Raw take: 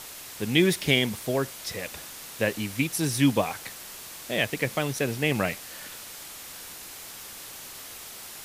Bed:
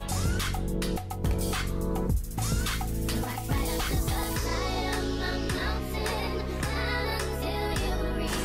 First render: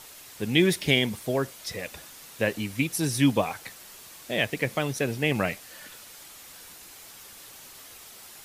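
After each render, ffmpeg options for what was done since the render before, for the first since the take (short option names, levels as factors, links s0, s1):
-af "afftdn=nr=6:nf=-42"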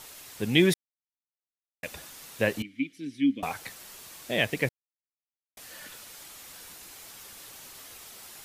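-filter_complex "[0:a]asettb=1/sr,asplit=3[s0][s1][s2];[s0]atrim=end=2.624[s3];[s1]atrim=start=2.62:end=3.43,asetpts=PTS-STARTPTS,afade=t=in:d=0.004:c=qsin,afade=t=out:st=0.806:d=0.004:c=qsin,asplit=3[s4][s5][s6];[s4]bandpass=f=270:t=q:w=8,volume=1[s7];[s5]bandpass=f=2290:t=q:w=8,volume=0.501[s8];[s6]bandpass=f=3010:t=q:w=8,volume=0.355[s9];[s7][s8][s9]amix=inputs=3:normalize=0[s10];[s2]atrim=start=3.426[s11];[s3][s10]acrossfade=d=0.004:c1=hsin:c2=qsin[s12];[s12][s11]acrossfade=d=0.004:c1=qsin:c2=hsin,asplit=5[s13][s14][s15][s16][s17];[s13]atrim=end=0.74,asetpts=PTS-STARTPTS,afade=t=out:st=0.736:d=0.004:c=hsin[s18];[s14]atrim=start=0.74:end=1.83,asetpts=PTS-STARTPTS,volume=0[s19];[s15]atrim=start=1.83:end=4.69,asetpts=PTS-STARTPTS,afade=t=in:d=0.004:c=hsin,afade=t=out:st=2.856:d=0.004:c=hsin[s20];[s16]atrim=start=4.69:end=5.57,asetpts=PTS-STARTPTS,volume=0[s21];[s17]atrim=start=5.57,asetpts=PTS-STARTPTS,afade=t=in:d=0.004:c=hsin[s22];[s18][s19][s20][s21][s22]concat=n=5:v=0:a=1"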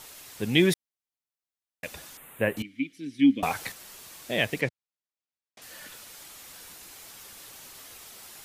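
-filter_complex "[0:a]asettb=1/sr,asplit=3[s0][s1][s2];[s0]atrim=end=2.174[s3];[s1]atrim=start=2.17:end=2.57,asetpts=PTS-STARTPTS,afade=t=in:d=0.004:c=qsin,afade=t=out:st=0.396:d=0.004:c=qsin,asuperstop=centerf=5200:order=4:qfactor=0.78[s4];[s2]atrim=start=2.566[s5];[s3][s4]acrossfade=d=0.004:c1=hsin:c2=qsin[s6];[s6][s5]acrossfade=d=0.004:c1=qsin:c2=hsin,asettb=1/sr,asplit=3[s7][s8][s9];[s7]atrim=end=3.194[s10];[s8]atrim=start=3.19:end=3.72,asetpts=PTS-STARTPTS,afade=t=in:d=0.004:c=qsin,afade=t=out:st=0.526:d=0.004:c=qsin,acontrast=23[s11];[s9]atrim=start=3.716[s12];[s10][s11]acrossfade=d=0.004:c1=hsin:c2=qsin[s13];[s13][s12]acrossfade=d=0.004:c1=qsin:c2=hsin,asettb=1/sr,asplit=3[s14][s15][s16];[s14]atrim=end=4.614[s17];[s15]atrim=start=4.61:end=5.62,asetpts=PTS-STARTPTS,afade=t=in:d=0.004:c=qsin,afade=t=out:st=1.006:d=0.004:c=qsin,highpass=100,lowpass=5900[s18];[s16]atrim=start=5.616[s19];[s17][s18]acrossfade=d=0.004:c1=hsin:c2=qsin[s20];[s20][s19]acrossfade=d=0.004:c1=qsin:c2=hsin"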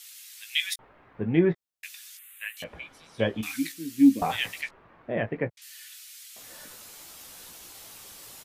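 -filter_complex "[0:a]asplit=2[s0][s1];[s1]adelay=18,volume=0.398[s2];[s0][s2]amix=inputs=2:normalize=0,acrossover=split=1800[s3][s4];[s3]adelay=790[s5];[s5][s4]amix=inputs=2:normalize=0"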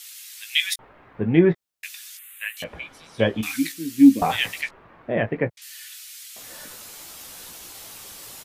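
-af "volume=1.88"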